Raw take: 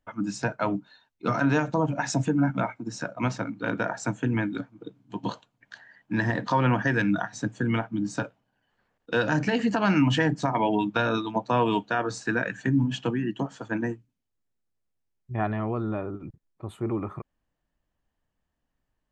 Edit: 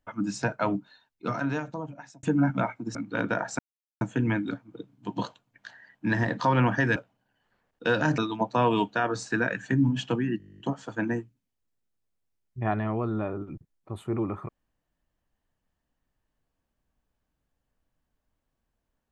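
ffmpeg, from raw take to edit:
ffmpeg -i in.wav -filter_complex "[0:a]asplit=17[link_01][link_02][link_03][link_04][link_05][link_06][link_07][link_08][link_09][link_10][link_11][link_12][link_13][link_14][link_15][link_16][link_17];[link_01]atrim=end=2.23,asetpts=PTS-STARTPTS,afade=type=out:start_time=0.72:duration=1.51[link_18];[link_02]atrim=start=2.23:end=2.952,asetpts=PTS-STARTPTS,afade=type=in:duration=0.004:curve=hsin[link_19];[link_03]atrim=start=3.438:end=4.08,asetpts=PTS-STARTPTS,afade=type=out:start_time=0.638:duration=0.004:curve=hsin,apad=pad_dur=0.42[link_20];[link_04]atrim=start=4.08:end=7.032,asetpts=PTS-STARTPTS,afade=type=in:duration=0.004:curve=hsin[link_21];[link_05]atrim=start=8.228:end=9.452[link_22];[link_06]atrim=start=11.128:end=13.352[link_23];[link_07]atrim=start=13.328:end=13.352[link_24];[link_08]atrim=start=13.328:end=13.352[link_25];[link_09]atrim=start=13.328:end=13.352[link_26];[link_10]atrim=start=13.328:end=13.352[link_27];[link_11]atrim=start=13.328:end=13.352[link_28];[link_12]atrim=start=13.328:end=13.352[link_29];[link_13]atrim=start=13.328:end=13.352[link_30];[link_14]atrim=start=13.328:end=13.352[link_31];[link_15]atrim=start=13.328:end=13.352[link_32];[link_16]atrim=start=13.328:end=13.352[link_33];[link_17]atrim=start=13.328[link_34];[link_18][link_19]concat=n=2:v=0:a=1[link_35];[link_20][link_21]concat=n=2:v=0:a=1[link_36];[link_35][link_36]acrossfade=duration=0.004:curve1=hsin:curve2=hsin[link_37];[link_37][link_22]acrossfade=duration=0.004:curve1=hsin:curve2=hsin[link_38];[link_38][link_23]acrossfade=duration=0.004:curve1=hsin:curve2=hsin[link_39];[link_39][link_24]acrossfade=duration=0.004:curve1=hsin:curve2=hsin[link_40];[link_40][link_25]acrossfade=duration=0.004:curve1=hsin:curve2=hsin[link_41];[link_41][link_26]acrossfade=duration=0.004:curve1=hsin:curve2=hsin[link_42];[link_42][link_27]acrossfade=duration=0.004:curve1=hsin:curve2=hsin[link_43];[link_43][link_28]acrossfade=duration=0.004:curve1=hsin:curve2=hsin[link_44];[link_44][link_29]acrossfade=duration=0.004:curve1=hsin:curve2=hsin[link_45];[link_45][link_30]acrossfade=duration=0.004:curve1=hsin:curve2=hsin[link_46];[link_46][link_31]acrossfade=duration=0.004:curve1=hsin:curve2=hsin[link_47];[link_47][link_32]acrossfade=duration=0.004:curve1=hsin:curve2=hsin[link_48];[link_48][link_33]acrossfade=duration=0.004:curve1=hsin:curve2=hsin[link_49];[link_49][link_34]acrossfade=duration=0.004:curve1=hsin:curve2=hsin" out.wav

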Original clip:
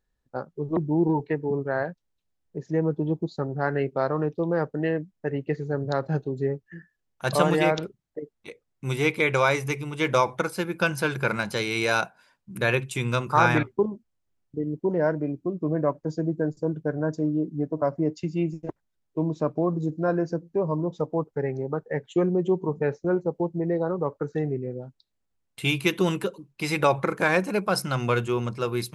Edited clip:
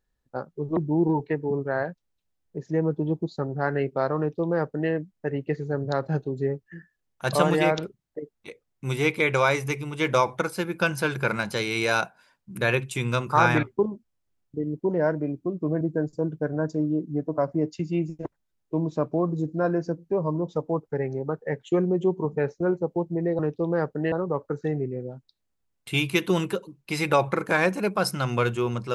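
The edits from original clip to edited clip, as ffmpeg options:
ffmpeg -i in.wav -filter_complex "[0:a]asplit=4[link_01][link_02][link_03][link_04];[link_01]atrim=end=15.812[link_05];[link_02]atrim=start=16.248:end=23.832[link_06];[link_03]atrim=start=4.178:end=4.912[link_07];[link_04]atrim=start=23.828[link_08];[link_05][link_06]acrossfade=duration=0.004:curve1=hsin:curve2=hsin[link_09];[link_09][link_07]acrossfade=duration=0.004:curve1=hsin:curve2=hsin[link_10];[link_10][link_08]acrossfade=duration=0.004:curve1=hsin:curve2=hsin" out.wav

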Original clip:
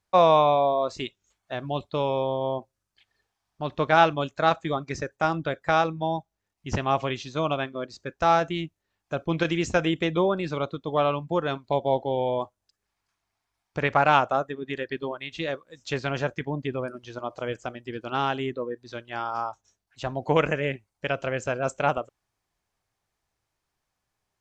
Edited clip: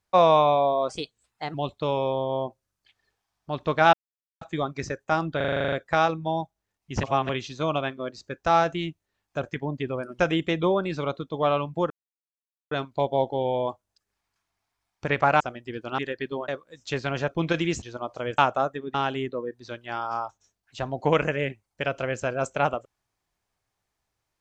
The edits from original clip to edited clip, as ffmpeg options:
ffmpeg -i in.wav -filter_complex "[0:a]asplit=26[link_01][link_02][link_03][link_04][link_05][link_06][link_07][link_08][link_09][link_10][link_11][link_12][link_13][link_14][link_15][link_16][link_17][link_18][link_19][link_20][link_21][link_22][link_23][link_24][link_25][link_26];[link_01]atrim=end=0.894[link_27];[link_02]atrim=start=0.89:end=1.66,asetpts=PTS-STARTPTS,asetrate=52038,aresample=44100,atrim=end_sample=28777,asetpts=PTS-STARTPTS[link_28];[link_03]atrim=start=1.656:end=4.05,asetpts=PTS-STARTPTS,afade=type=out:start_time=2.39:duration=0.004:curve=hsin[link_29];[link_04]atrim=start=4.05:end=4.53,asetpts=PTS-STARTPTS,volume=0[link_30];[link_05]atrim=start=4.53:end=5.522,asetpts=PTS-STARTPTS,afade=type=in:duration=0.004:curve=hsin[link_31];[link_06]atrim=start=5.478:end=5.522[link_32];[link_07]atrim=start=5.478:end=5.522[link_33];[link_08]atrim=start=5.478:end=5.522[link_34];[link_09]atrim=start=5.478:end=5.522[link_35];[link_10]atrim=start=5.478:end=5.522[link_36];[link_11]atrim=start=5.478:end=5.522[link_37];[link_12]atrim=start=5.478:end=5.522[link_38];[link_13]atrim=start=5.478:end=5.522[link_39];[link_14]atrim=start=5.478:end=6.792[link_40];[link_15]atrim=start=6.788:end=7.052,asetpts=PTS-STARTPTS,areverse[link_41];[link_16]atrim=start=7.048:end=9.192[link_42];[link_17]atrim=start=16.278:end=17.042[link_43];[link_18]atrim=start=9.728:end=11.44,asetpts=PTS-STARTPTS,afade=type=out:start_time=1.708:duration=0.004:curve=hsin,apad=pad_dur=0.81[link_44];[link_19]atrim=start=11.44:end=14.132,asetpts=PTS-STARTPTS,afade=type=in:duration=0.004:curve=hsin[link_45];[link_20]atrim=start=17.598:end=18.182[link_46];[link_21]atrim=start=14.688:end=15.192[link_47];[link_22]atrim=start=15.478:end=16.282[link_48];[link_23]atrim=start=9.188:end=9.732[link_49];[link_24]atrim=start=17.038:end=17.602[link_50];[link_25]atrim=start=14.128:end=14.692[link_51];[link_26]atrim=start=18.178[link_52];[link_27][link_28]acrossfade=duration=0.004:curve1=hsin:curve2=hsin[link_53];[link_29][link_30][link_31]concat=n=3:v=0:a=1[link_54];[link_53][link_54]acrossfade=duration=0.004:curve1=hsin:curve2=hsin[link_55];[link_55][link_32]acrossfade=duration=0.004:curve1=hsin:curve2=hsin[link_56];[link_56][link_33]acrossfade=duration=0.004:curve1=hsin:curve2=hsin[link_57];[link_57][link_34]acrossfade=duration=0.004:curve1=hsin:curve2=hsin[link_58];[link_58][link_35]acrossfade=duration=0.004:curve1=hsin:curve2=hsin[link_59];[link_59][link_36]acrossfade=duration=0.004:curve1=hsin:curve2=hsin[link_60];[link_60][link_37]acrossfade=duration=0.004:curve1=hsin:curve2=hsin[link_61];[link_61][link_38]acrossfade=duration=0.004:curve1=hsin:curve2=hsin[link_62];[link_62][link_39]acrossfade=duration=0.004:curve1=hsin:curve2=hsin[link_63];[link_63][link_40]acrossfade=duration=0.004:curve1=hsin:curve2=hsin[link_64];[link_64][link_41]acrossfade=duration=0.004:curve1=hsin:curve2=hsin[link_65];[link_65][link_42]acrossfade=duration=0.004:curve1=hsin:curve2=hsin[link_66];[link_66][link_43]acrossfade=duration=0.004:curve1=hsin:curve2=hsin[link_67];[link_44][link_45]concat=n=2:v=0:a=1[link_68];[link_67][link_68]acrossfade=duration=0.004:curve1=hsin:curve2=hsin[link_69];[link_69][link_46]acrossfade=duration=0.004:curve1=hsin:curve2=hsin[link_70];[link_70][link_47]acrossfade=duration=0.004:curve1=hsin:curve2=hsin[link_71];[link_71][link_48]acrossfade=duration=0.004:curve1=hsin:curve2=hsin[link_72];[link_72][link_49]acrossfade=duration=0.004:curve1=hsin:curve2=hsin[link_73];[link_73][link_50]acrossfade=duration=0.004:curve1=hsin:curve2=hsin[link_74];[link_74][link_51]acrossfade=duration=0.004:curve1=hsin:curve2=hsin[link_75];[link_75][link_52]acrossfade=duration=0.004:curve1=hsin:curve2=hsin" out.wav

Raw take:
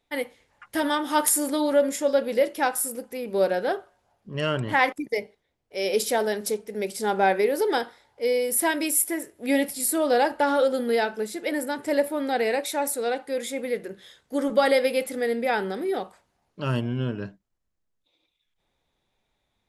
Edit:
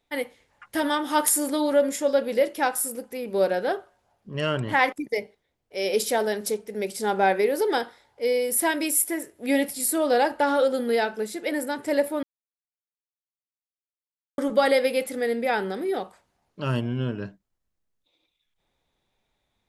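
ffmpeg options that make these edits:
ffmpeg -i in.wav -filter_complex "[0:a]asplit=3[link_01][link_02][link_03];[link_01]atrim=end=12.23,asetpts=PTS-STARTPTS,afade=type=out:start_time=12.226:duration=0.004:curve=hsin[link_04];[link_02]atrim=start=12.23:end=14.38,asetpts=PTS-STARTPTS,volume=0[link_05];[link_03]atrim=start=14.38,asetpts=PTS-STARTPTS,afade=type=in:duration=0.004:curve=hsin[link_06];[link_04][link_05][link_06]concat=n=3:v=0:a=1" out.wav

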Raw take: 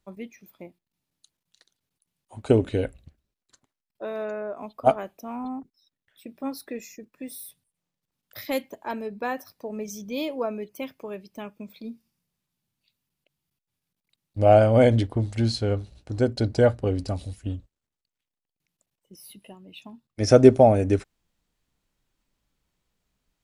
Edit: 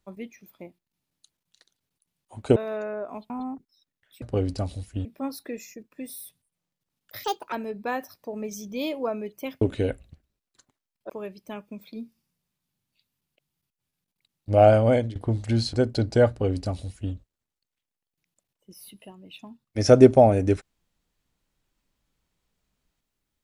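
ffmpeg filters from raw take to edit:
ffmpeg -i in.wav -filter_complex "[0:a]asplit=11[link_01][link_02][link_03][link_04][link_05][link_06][link_07][link_08][link_09][link_10][link_11];[link_01]atrim=end=2.562[link_12];[link_02]atrim=start=4.038:end=4.782[link_13];[link_03]atrim=start=5.348:end=6.272[link_14];[link_04]atrim=start=16.718:end=17.552[link_15];[link_05]atrim=start=6.268:end=8.464[link_16];[link_06]atrim=start=8.46:end=8.89,asetpts=PTS-STARTPTS,asetrate=66591,aresample=44100,atrim=end_sample=12558,asetpts=PTS-STARTPTS[link_17];[link_07]atrim=start=8.886:end=10.982[link_18];[link_08]atrim=start=2.558:end=4.042[link_19];[link_09]atrim=start=10.978:end=15.04,asetpts=PTS-STARTPTS,afade=type=out:start_time=3.692:duration=0.37:silence=0.105925[link_20];[link_10]atrim=start=15.04:end=15.622,asetpts=PTS-STARTPTS,afade=type=in:duration=0.004:curve=hsin:silence=0.105925[link_21];[link_11]atrim=start=16.158[link_22];[link_12][link_13]acrossfade=duration=0.004:curve1=hsin:curve2=hsin[link_23];[link_23][link_14]acrossfade=duration=0.004:curve1=hsin:curve2=hsin[link_24];[link_24][link_15]acrossfade=duration=0.004:curve1=hsin:curve2=hsin[link_25];[link_25][link_16]acrossfade=duration=0.004:curve1=hsin:curve2=hsin[link_26];[link_26][link_17]acrossfade=duration=0.004:curve1=hsin:curve2=hsin[link_27];[link_27][link_18]acrossfade=duration=0.004:curve1=hsin:curve2=hsin[link_28];[link_28][link_19]acrossfade=duration=0.004:curve1=hsin:curve2=hsin[link_29];[link_20][link_21]concat=n=2:v=0:a=1[link_30];[link_29][link_30]acrossfade=duration=0.004:curve1=hsin:curve2=hsin[link_31];[link_31][link_22]acrossfade=duration=0.004:curve1=hsin:curve2=hsin" out.wav

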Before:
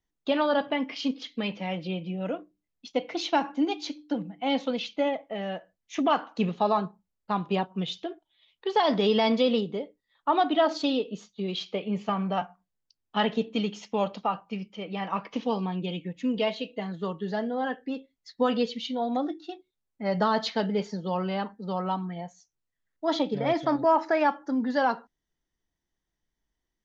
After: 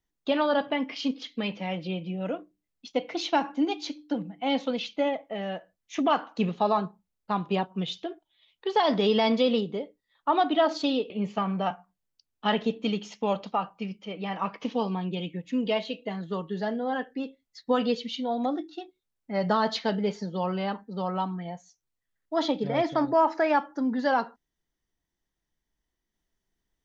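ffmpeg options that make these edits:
ffmpeg -i in.wav -filter_complex "[0:a]asplit=2[link_01][link_02];[link_01]atrim=end=11.102[link_03];[link_02]atrim=start=11.808[link_04];[link_03][link_04]acrossfade=duration=0.004:curve1=hsin:curve2=hsin" out.wav

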